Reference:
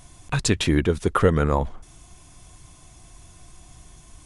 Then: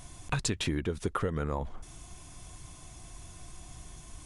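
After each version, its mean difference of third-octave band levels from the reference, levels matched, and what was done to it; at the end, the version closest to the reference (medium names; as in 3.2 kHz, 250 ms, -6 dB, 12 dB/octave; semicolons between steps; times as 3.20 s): 7.5 dB: compression 12:1, threshold -27 dBFS, peak gain reduction 15.5 dB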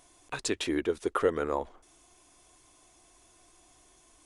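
3.0 dB: resonant low shelf 230 Hz -13 dB, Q 1.5; trim -8.5 dB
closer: second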